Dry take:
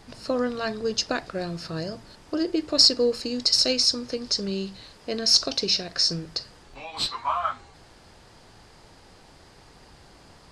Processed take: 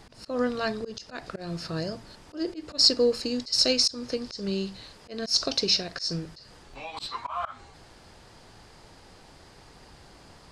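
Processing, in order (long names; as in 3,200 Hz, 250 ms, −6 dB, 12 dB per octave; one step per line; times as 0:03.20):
volume swells 165 ms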